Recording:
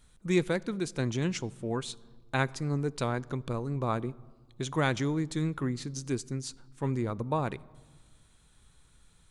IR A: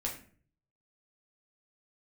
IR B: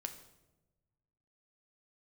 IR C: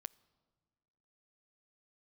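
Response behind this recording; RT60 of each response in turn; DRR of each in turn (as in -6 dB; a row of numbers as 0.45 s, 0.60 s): C; 0.45 s, 1.1 s, 1.6 s; -2.5 dB, 6.0 dB, 20.5 dB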